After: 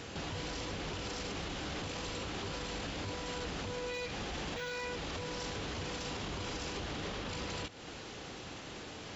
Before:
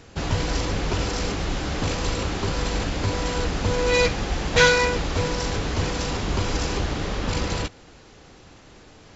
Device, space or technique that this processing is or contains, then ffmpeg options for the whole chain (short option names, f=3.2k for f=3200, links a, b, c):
broadcast voice chain: -af "highpass=f=110:p=1,deesser=0.55,acompressor=threshold=-37dB:ratio=4,equalizer=f=3.1k:t=o:w=0.75:g=4,alimiter=level_in=10dB:limit=-24dB:level=0:latency=1:release=37,volume=-10dB,volume=3dB"